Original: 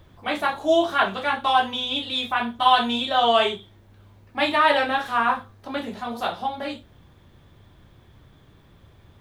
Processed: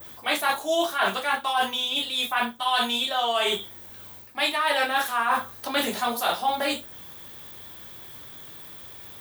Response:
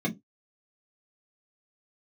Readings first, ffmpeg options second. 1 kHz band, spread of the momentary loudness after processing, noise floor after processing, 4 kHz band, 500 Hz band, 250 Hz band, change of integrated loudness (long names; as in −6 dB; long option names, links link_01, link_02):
−3.5 dB, 17 LU, −44 dBFS, +0.5 dB, −4.5 dB, −5.0 dB, −2.5 dB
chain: -af "aemphasis=mode=production:type=riaa,areverse,acompressor=threshold=-28dB:ratio=16,areverse,adynamicequalizer=threshold=0.00501:dfrequency=3900:dqfactor=1:tfrequency=3900:tqfactor=1:attack=5:release=100:ratio=0.375:range=2.5:mode=cutabove:tftype=bell,volume=8.5dB"